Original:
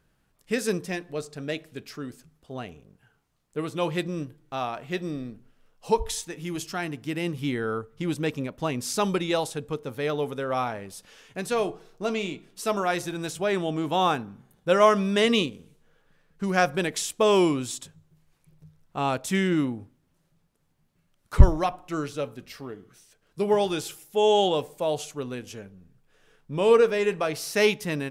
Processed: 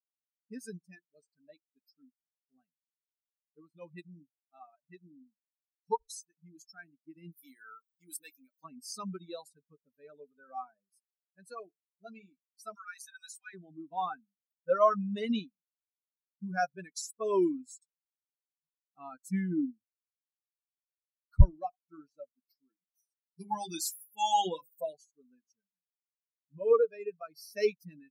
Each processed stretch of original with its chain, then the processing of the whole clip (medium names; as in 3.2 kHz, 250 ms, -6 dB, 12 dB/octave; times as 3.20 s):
7.32–8.64 s: RIAA curve recording + doubling 23 ms -11.5 dB
12.75–13.54 s: high-pass 1.2 kHz 24 dB/octave + level flattener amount 50%
22.69–24.93 s: treble shelf 2.8 kHz +8.5 dB + hum notches 50/100/150/200/250/300/350/400/450/500 Hz + comb 5.9 ms, depth 93%
whole clip: expander on every frequency bin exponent 3; high-order bell 2.5 kHz -9 dB 1.3 oct; trim -2.5 dB